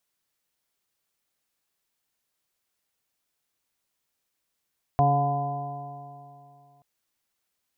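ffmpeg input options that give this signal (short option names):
-f lavfi -i "aevalsrc='0.0891*pow(10,-3*t/2.68)*sin(2*PI*140.09*t)+0.0282*pow(10,-3*t/2.68)*sin(2*PI*280.73*t)+0.0224*pow(10,-3*t/2.68)*sin(2*PI*422.45*t)+0.0133*pow(10,-3*t/2.68)*sin(2*PI*565.79*t)+0.126*pow(10,-3*t/2.68)*sin(2*PI*711.28*t)+0.015*pow(10,-3*t/2.68)*sin(2*PI*859.43*t)+0.0376*pow(10,-3*t/2.68)*sin(2*PI*1010.73*t)':d=1.83:s=44100"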